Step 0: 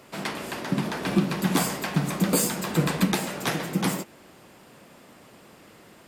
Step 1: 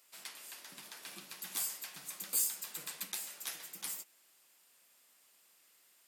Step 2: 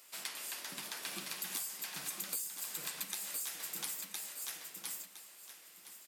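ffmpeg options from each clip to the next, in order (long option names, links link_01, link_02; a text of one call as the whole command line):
ffmpeg -i in.wav -af "aderivative,volume=-7dB" out.wav
ffmpeg -i in.wav -filter_complex "[0:a]asplit=2[link_01][link_02];[link_02]aecho=0:1:1012|2024|3036:0.398|0.0876|0.0193[link_03];[link_01][link_03]amix=inputs=2:normalize=0,acompressor=threshold=-44dB:ratio=12,volume=7.5dB" out.wav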